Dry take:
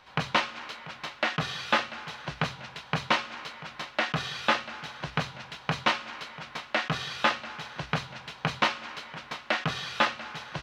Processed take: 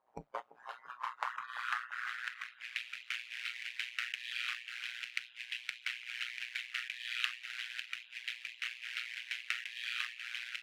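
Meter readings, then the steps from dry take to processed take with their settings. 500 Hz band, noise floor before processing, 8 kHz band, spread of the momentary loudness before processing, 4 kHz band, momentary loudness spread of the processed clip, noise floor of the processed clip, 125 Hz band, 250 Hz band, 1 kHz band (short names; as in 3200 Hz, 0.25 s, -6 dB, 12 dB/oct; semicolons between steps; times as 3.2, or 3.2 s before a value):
under -20 dB, -50 dBFS, -8.5 dB, 12 LU, -8.0 dB, 6 LU, -62 dBFS, under -30 dB, under -25 dB, -15.0 dB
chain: half-waves squared off; resonant low shelf 130 Hz -8 dB, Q 3; compressor 12:1, threshold -31 dBFS, peak gain reduction 16.5 dB; band-pass sweep 660 Hz -> 2500 Hz, 0.25–2.83; spectral noise reduction 24 dB; AM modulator 120 Hz, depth 95%; band-limited delay 0.34 s, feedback 31%, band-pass 660 Hz, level -13 dB; gain +8.5 dB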